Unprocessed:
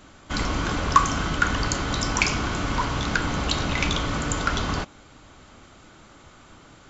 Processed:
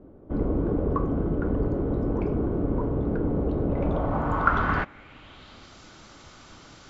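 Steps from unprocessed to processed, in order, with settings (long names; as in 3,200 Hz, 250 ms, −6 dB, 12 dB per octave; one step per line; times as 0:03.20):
low-pass filter sweep 440 Hz → 5,500 Hz, 0:03.65–0:05.76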